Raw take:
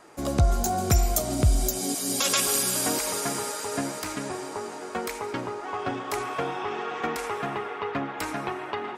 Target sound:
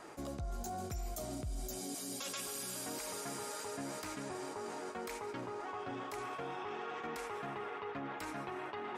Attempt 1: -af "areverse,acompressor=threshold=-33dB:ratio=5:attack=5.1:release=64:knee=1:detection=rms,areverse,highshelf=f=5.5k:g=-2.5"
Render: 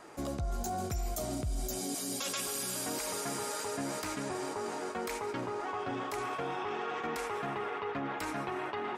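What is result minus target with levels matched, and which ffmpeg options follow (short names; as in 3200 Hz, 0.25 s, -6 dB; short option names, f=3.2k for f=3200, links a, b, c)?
compressor: peak gain reduction -6 dB
-af "areverse,acompressor=threshold=-40.5dB:ratio=5:attack=5.1:release=64:knee=1:detection=rms,areverse,highshelf=f=5.5k:g=-2.5"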